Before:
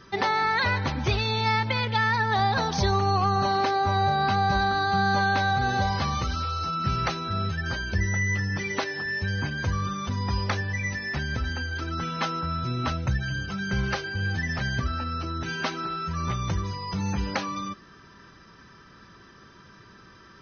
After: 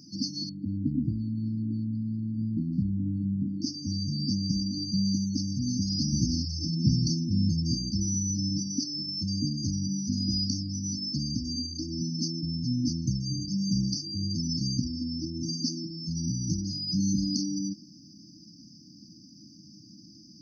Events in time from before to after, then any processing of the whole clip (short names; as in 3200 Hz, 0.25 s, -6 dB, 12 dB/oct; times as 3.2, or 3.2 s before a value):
0.49–3.62 steep low-pass 2300 Hz
6.12–7.9 low shelf 260 Hz +8 dB
whole clip: FFT band-reject 330–4400 Hz; HPF 220 Hz 12 dB/oct; gain +8.5 dB